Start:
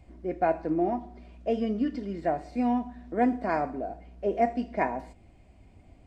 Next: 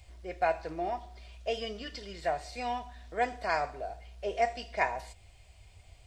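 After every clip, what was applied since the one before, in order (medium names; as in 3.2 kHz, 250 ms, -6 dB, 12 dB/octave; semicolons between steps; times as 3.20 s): FFT filter 100 Hz 0 dB, 270 Hz -22 dB, 420 Hz -6 dB, 2.2 kHz +4 dB, 3.4 kHz +12 dB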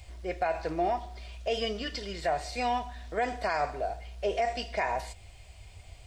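peak limiter -25.5 dBFS, peak gain reduction 10 dB; trim +6 dB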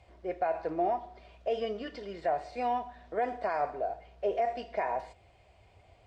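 band-pass filter 510 Hz, Q 0.59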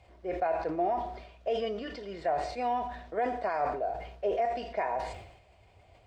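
decay stretcher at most 66 dB/s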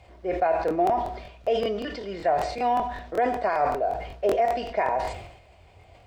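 crackling interface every 0.19 s, samples 1024, repeat, from 0.66 s; trim +6.5 dB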